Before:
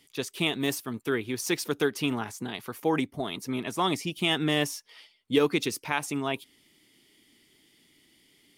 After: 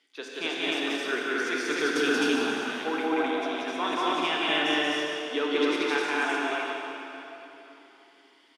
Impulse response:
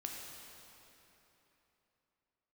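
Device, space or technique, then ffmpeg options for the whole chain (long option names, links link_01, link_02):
station announcement: -filter_complex "[0:a]highpass=frequency=190:width=0.5412,highpass=frequency=190:width=1.3066,asettb=1/sr,asplit=3[link_01][link_02][link_03];[link_01]atrim=end=1.694[link_04];[link_02]atrim=start=1.69:end=2.29,asetpts=PTS-STARTPTS,afade=type=in:duration=0.004:curve=qsin,afade=type=out:start_time=0.596:duration=0.004:curve=qsin,bass=frequency=250:gain=13,treble=frequency=4000:gain=13[link_05];[link_03]atrim=start=2.286[link_06];[link_04][link_05]acrossfade=duration=0.004:curve1=hsin:curve2=qsin[link_07];[link_07][link_06]acrossfade=duration=0.004:curve1=qsin:curve2=hsin,highpass=370,lowpass=4800,equalizer=frequency=1500:width_type=o:width=0.22:gain=9.5,aecho=1:1:145.8|183.7:0.316|0.316,aecho=1:1:180.8|259.5:0.794|1[link_08];[1:a]atrim=start_sample=2205[link_09];[link_08][link_09]afir=irnorm=-1:irlink=0,volume=-1dB"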